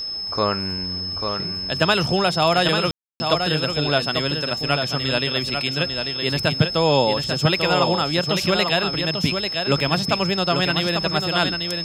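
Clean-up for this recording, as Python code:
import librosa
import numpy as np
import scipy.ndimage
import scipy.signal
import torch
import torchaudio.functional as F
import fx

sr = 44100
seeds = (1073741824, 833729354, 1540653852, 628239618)

y = fx.notch(x, sr, hz=5200.0, q=30.0)
y = fx.fix_ambience(y, sr, seeds[0], print_start_s=0.72, print_end_s=1.22, start_s=2.91, end_s=3.2)
y = fx.fix_echo_inverse(y, sr, delay_ms=843, level_db=-6.0)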